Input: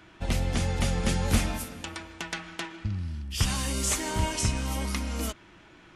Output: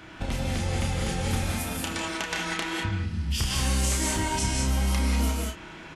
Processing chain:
downward compressor 4 to 1, threshold −36 dBFS, peak gain reduction 15.5 dB
double-tracking delay 31 ms −5 dB
reverb whose tail is shaped and stops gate 220 ms rising, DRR −1 dB
level +6.5 dB

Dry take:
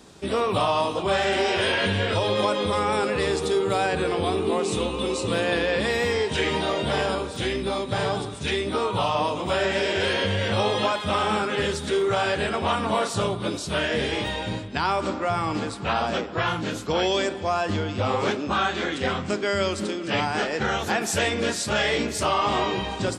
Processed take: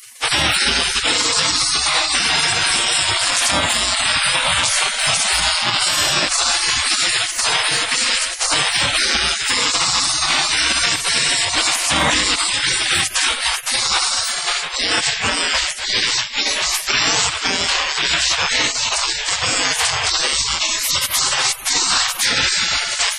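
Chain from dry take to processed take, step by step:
gate on every frequency bin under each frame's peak −25 dB weak
boost into a limiter +32 dB
level −5.5 dB

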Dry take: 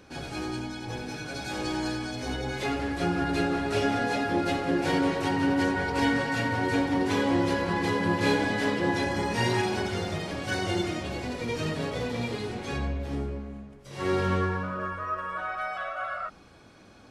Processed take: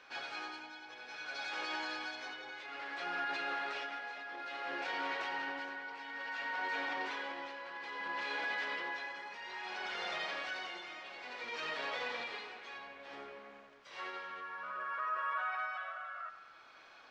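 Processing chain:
high-pass filter 1,100 Hz 12 dB per octave
in parallel at −2.5 dB: compressor whose output falls as the input rises −39 dBFS
on the sum: brickwall limiter −24.5 dBFS, peak gain reduction 6.5 dB
amplitude tremolo 0.59 Hz, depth 66%
bit-depth reduction 10 bits, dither none
high-frequency loss of the air 200 metres
on a send: bucket-brigade delay 90 ms, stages 2,048, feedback 70%, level −12.5 dB
on the sum: level −2.5 dB

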